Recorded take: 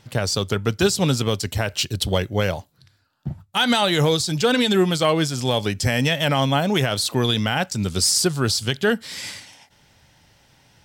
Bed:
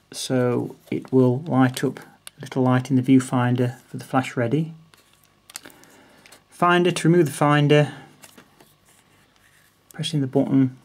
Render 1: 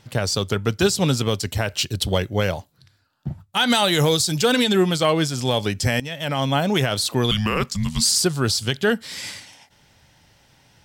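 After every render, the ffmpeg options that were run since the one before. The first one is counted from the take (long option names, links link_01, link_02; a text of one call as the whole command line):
ffmpeg -i in.wav -filter_complex "[0:a]asettb=1/sr,asplit=3[link_01][link_02][link_03];[link_01]atrim=end=3.704[link_04];[link_02]atrim=start=3.7:end=4.64,asetpts=PTS-STARTPTS,afade=type=in:duration=0.004:curve=qsin,afade=type=out:start_time=0.936:duration=0.004:curve=qsin,highshelf=frequency=7100:gain=8.5[link_05];[link_03]atrim=start=4.636[link_06];[link_04][link_05]acrossfade=duration=0.004:curve1=hsin:curve2=qsin[link_07];[link_07][link_06]acrossfade=duration=0.004:curve1=qsin:curve2=hsin,asettb=1/sr,asplit=3[link_08][link_09][link_10];[link_08]atrim=end=7.314[link_11];[link_09]atrim=start=7.31:end=8.16,asetpts=PTS-STARTPTS,afade=type=in:duration=0.004:curve=qsin,afade=type=out:start_time=0.846:duration=0.004:curve=qsin,afreqshift=-320[link_12];[link_10]atrim=start=8.156[link_13];[link_11][link_12]acrossfade=duration=0.004:curve1=hsin:curve2=qsin[link_14];[link_14][link_13]acrossfade=duration=0.004:curve1=qsin:curve2=hsin,asplit=2[link_15][link_16];[link_15]atrim=end=6,asetpts=PTS-STARTPTS,afade=type=out:start_time=5.996:duration=0.004:curve=hsin:silence=0.158489[link_17];[link_16]atrim=start=6,asetpts=PTS-STARTPTS,afade=type=in:duration=0.6:silence=0.158489[link_18];[link_17][link_18]concat=n=2:v=0:a=1" out.wav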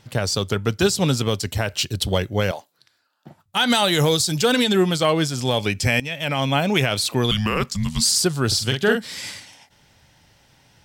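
ffmpeg -i in.wav -filter_complex "[0:a]asettb=1/sr,asplit=3[link_01][link_02][link_03];[link_01]atrim=end=2.514[link_04];[link_02]atrim=start=2.51:end=3.46,asetpts=PTS-STARTPTS,afade=type=in:duration=0.004:curve=qsin,afade=type=out:start_time=0.946:duration=0.004:curve=qsin,highpass=400[link_05];[link_03]atrim=start=3.456[link_06];[link_04][link_05]acrossfade=duration=0.004:curve1=hsin:curve2=qsin[link_07];[link_07][link_06]acrossfade=duration=0.004:curve1=qsin:curve2=hsin,asettb=1/sr,asplit=3[link_08][link_09][link_10];[link_08]atrim=end=5.584[link_11];[link_09]atrim=start=5.58:end=7.16,asetpts=PTS-STARTPTS,afade=type=in:duration=0.004:curve=qsin,afade=type=out:start_time=1.576:duration=0.004:curve=qsin,equalizer=frequency=2400:width=4.5:gain=8.5[link_12];[link_10]atrim=start=7.156[link_13];[link_11][link_12]acrossfade=duration=0.004:curve1=hsin:curve2=qsin[link_14];[link_14][link_13]acrossfade=duration=0.004:curve1=qsin:curve2=hsin,asettb=1/sr,asplit=3[link_15][link_16][link_17];[link_15]atrim=end=8.474[link_18];[link_16]atrim=start=8.47:end=9.11,asetpts=PTS-STARTPTS,afade=type=in:duration=0.004:curve=qsin,afade=type=out:start_time=0.636:duration=0.004:curve=qsin,asplit=2[link_19][link_20];[link_20]adelay=45,volume=-4.5dB[link_21];[link_19][link_21]amix=inputs=2:normalize=0,atrim=end_sample=28224[link_22];[link_17]atrim=start=9.106[link_23];[link_18][link_22]acrossfade=duration=0.004:curve1=hsin:curve2=qsin[link_24];[link_24][link_23]acrossfade=duration=0.004:curve1=qsin:curve2=hsin" out.wav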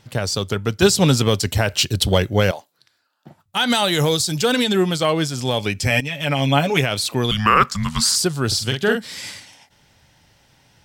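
ffmpeg -i in.wav -filter_complex "[0:a]asettb=1/sr,asplit=3[link_01][link_02][link_03];[link_01]atrim=end=0.824[link_04];[link_02]atrim=start=0.82:end=2.51,asetpts=PTS-STARTPTS,afade=type=in:duration=0.004:curve=qsin,afade=type=out:start_time=1.686:duration=0.004:curve=qsin,acontrast=23[link_05];[link_03]atrim=start=2.506[link_06];[link_04][link_05]acrossfade=duration=0.004:curve1=hsin:curve2=qsin[link_07];[link_07][link_06]acrossfade=duration=0.004:curve1=qsin:curve2=hsin,asettb=1/sr,asplit=3[link_08][link_09][link_10];[link_08]atrim=end=5.904[link_11];[link_09]atrim=start=5.9:end=6.81,asetpts=PTS-STARTPTS,afade=type=in:duration=0.004:curve=qsin,afade=type=out:start_time=0.906:duration=0.004:curve=qsin,aecho=1:1:7:0.71,atrim=end_sample=40131[link_12];[link_10]atrim=start=6.806[link_13];[link_11][link_12]acrossfade=duration=0.004:curve1=hsin:curve2=qsin[link_14];[link_14][link_13]acrossfade=duration=0.004:curve1=qsin:curve2=hsin,asettb=1/sr,asplit=3[link_15][link_16][link_17];[link_15]atrim=end=7.394[link_18];[link_16]atrim=start=7.39:end=8.16,asetpts=PTS-STARTPTS,afade=type=in:duration=0.004:curve=qsin,afade=type=out:start_time=0.766:duration=0.004:curve=qsin,equalizer=frequency=1300:width_type=o:width=1.2:gain=15[link_19];[link_17]atrim=start=8.156[link_20];[link_18][link_19]acrossfade=duration=0.004:curve1=hsin:curve2=qsin[link_21];[link_21][link_20]acrossfade=duration=0.004:curve1=qsin:curve2=hsin" out.wav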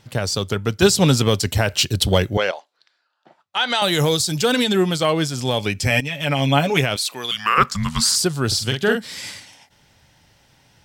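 ffmpeg -i in.wav -filter_complex "[0:a]asettb=1/sr,asplit=3[link_01][link_02][link_03];[link_01]atrim=end=2.374[link_04];[link_02]atrim=start=2.37:end=3.82,asetpts=PTS-STARTPTS,afade=type=in:duration=0.004:curve=qsin,afade=type=out:start_time=1.446:duration=0.004:curve=qsin,highpass=480,lowpass=4800[link_05];[link_03]atrim=start=3.816[link_06];[link_04][link_05]acrossfade=duration=0.004:curve1=hsin:curve2=qsin[link_07];[link_07][link_06]acrossfade=duration=0.004:curve1=qsin:curve2=hsin,asettb=1/sr,asplit=3[link_08][link_09][link_10];[link_08]atrim=end=6.964[link_11];[link_09]atrim=start=6.96:end=7.58,asetpts=PTS-STARTPTS,afade=type=in:duration=0.004:curve=qsin,afade=type=out:start_time=0.616:duration=0.004:curve=qsin,highpass=frequency=1400:poles=1[link_12];[link_10]atrim=start=7.576[link_13];[link_11][link_12]acrossfade=duration=0.004:curve1=hsin:curve2=qsin[link_14];[link_14][link_13]acrossfade=duration=0.004:curve1=qsin:curve2=hsin" out.wav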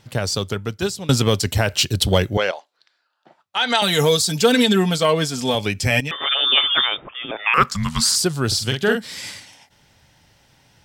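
ffmpeg -i in.wav -filter_complex "[0:a]asettb=1/sr,asplit=3[link_01][link_02][link_03];[link_01]atrim=end=3.614[link_04];[link_02]atrim=start=3.61:end=5.55,asetpts=PTS-STARTPTS,afade=type=in:duration=0.004:curve=qsin,afade=type=out:start_time=1.936:duration=0.004:curve=qsin,aecho=1:1:4.4:0.65,atrim=end_sample=85554[link_05];[link_03]atrim=start=5.546[link_06];[link_04][link_05]acrossfade=duration=0.004:curve1=hsin:curve2=qsin[link_07];[link_07][link_06]acrossfade=duration=0.004:curve1=qsin:curve2=hsin,asettb=1/sr,asplit=3[link_08][link_09][link_10];[link_08]atrim=end=6.114[link_11];[link_09]atrim=start=6.11:end=7.54,asetpts=PTS-STARTPTS,afade=type=in:duration=0.004:curve=qsin,afade=type=out:start_time=1.426:duration=0.004:curve=qsin,lowpass=frequency=3100:width_type=q:width=0.5098,lowpass=frequency=3100:width_type=q:width=0.6013,lowpass=frequency=3100:width_type=q:width=0.9,lowpass=frequency=3100:width_type=q:width=2.563,afreqshift=-3700[link_12];[link_10]atrim=start=7.536[link_13];[link_11][link_12]acrossfade=duration=0.004:curve1=hsin:curve2=qsin[link_14];[link_14][link_13]acrossfade=duration=0.004:curve1=qsin:curve2=hsin,asplit=2[link_15][link_16];[link_15]atrim=end=1.09,asetpts=PTS-STARTPTS,afade=type=out:start_time=0.36:duration=0.73:silence=0.0707946[link_17];[link_16]atrim=start=1.09,asetpts=PTS-STARTPTS,afade=type=in:duration=0.004:curve=hsin:silence=0.0707946[link_18];[link_17][link_18]concat=n=2:v=0:a=1" out.wav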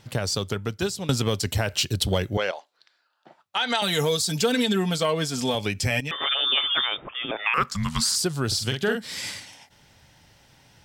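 ffmpeg -i in.wav -af "acompressor=threshold=-25dB:ratio=2" out.wav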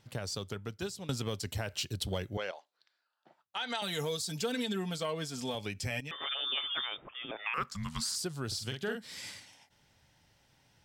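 ffmpeg -i in.wav -af "volume=-11.5dB" out.wav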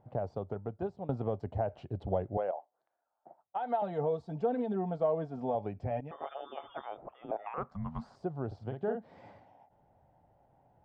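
ffmpeg -i in.wav -af "lowpass=frequency=730:width_type=q:width=3.7" out.wav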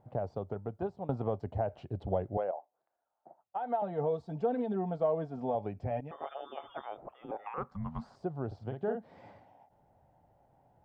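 ffmpeg -i in.wav -filter_complex "[0:a]asettb=1/sr,asplit=3[link_01][link_02][link_03];[link_01]atrim=end=0.734[link_04];[link_02]atrim=start=0.73:end=1.38,asetpts=PTS-STARTPTS,afade=type=in:duration=0.004:curve=qsin,afade=type=out:start_time=0.646:duration=0.004:curve=qsin,equalizer=frequency=980:width=1.5:gain=3.5[link_05];[link_03]atrim=start=1.376[link_06];[link_04][link_05]acrossfade=duration=0.004:curve1=hsin:curve2=qsin[link_07];[link_07][link_06]acrossfade=duration=0.004:curve1=qsin:curve2=hsin,asettb=1/sr,asplit=3[link_08][link_09][link_10];[link_08]atrim=end=2.444[link_11];[link_09]atrim=start=2.44:end=3.98,asetpts=PTS-STARTPTS,afade=type=in:duration=0.004:curve=qsin,afade=type=out:start_time=1.536:duration=0.004:curve=qsin,highshelf=frequency=3000:gain=-11.5[link_12];[link_10]atrim=start=3.976[link_13];[link_11][link_12]acrossfade=duration=0.004:curve1=hsin:curve2=qsin[link_14];[link_14][link_13]acrossfade=duration=0.004:curve1=qsin:curve2=hsin,asettb=1/sr,asplit=3[link_15][link_16][link_17];[link_15]atrim=end=7.214[link_18];[link_16]atrim=start=7.21:end=7.81,asetpts=PTS-STARTPTS,afade=type=in:duration=0.004:curve=qsin,afade=type=out:start_time=0.596:duration=0.004:curve=qsin,asuperstop=centerf=660:order=4:qfactor=4.9[link_19];[link_17]atrim=start=7.806[link_20];[link_18][link_19]acrossfade=duration=0.004:curve1=hsin:curve2=qsin[link_21];[link_21][link_20]acrossfade=duration=0.004:curve1=qsin:curve2=hsin" out.wav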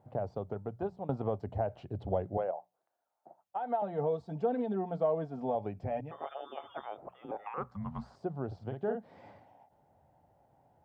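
ffmpeg -i in.wav -af "highpass=52,bandreject=frequency=60:width_type=h:width=6,bandreject=frequency=120:width_type=h:width=6,bandreject=frequency=180:width_type=h:width=6" out.wav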